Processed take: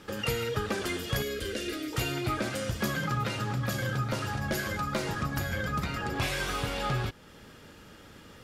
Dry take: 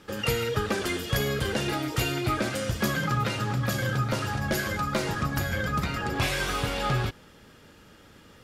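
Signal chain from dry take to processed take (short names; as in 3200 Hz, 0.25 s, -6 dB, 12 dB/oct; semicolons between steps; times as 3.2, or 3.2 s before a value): in parallel at +2.5 dB: compressor, threshold -40 dBFS, peak gain reduction 17.5 dB; 1.22–1.93 on the sum: fixed phaser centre 360 Hz, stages 4; gain -5.5 dB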